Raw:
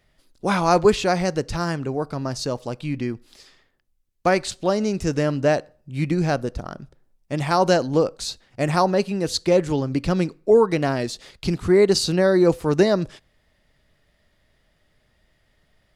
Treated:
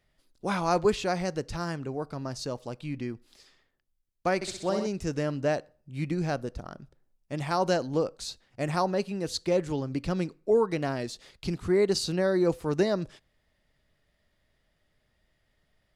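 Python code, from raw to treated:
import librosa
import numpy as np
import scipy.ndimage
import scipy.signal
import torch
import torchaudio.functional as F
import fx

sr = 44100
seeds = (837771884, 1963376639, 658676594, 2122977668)

y = fx.room_flutter(x, sr, wall_m=10.8, rt60_s=0.71, at=(4.35, 4.87))
y = y * librosa.db_to_amplitude(-8.0)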